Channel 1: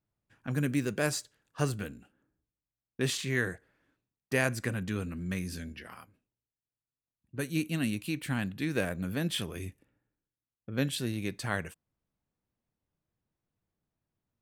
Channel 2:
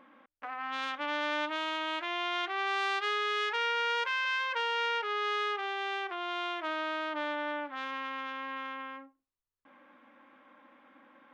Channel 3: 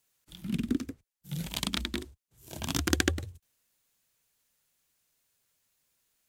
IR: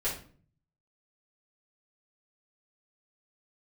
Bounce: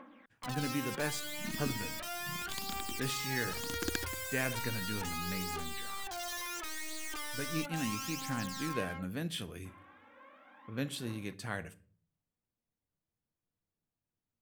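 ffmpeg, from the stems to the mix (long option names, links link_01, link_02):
-filter_complex "[0:a]volume=-7dB,asplit=2[link_01][link_02];[link_02]volume=-17.5dB[link_03];[1:a]aeval=exprs='(mod(29.9*val(0)+1,2)-1)/29.9':channel_layout=same,aphaser=in_gain=1:out_gain=1:delay=3:decay=0.61:speed=0.36:type=triangular,asoftclip=type=tanh:threshold=-36dB,volume=-0.5dB[link_04];[2:a]tremolo=f=32:d=0.788,adelay=950,volume=-8.5dB[link_05];[3:a]atrim=start_sample=2205[link_06];[link_03][link_06]afir=irnorm=-1:irlink=0[link_07];[link_01][link_04][link_05][link_07]amix=inputs=4:normalize=0"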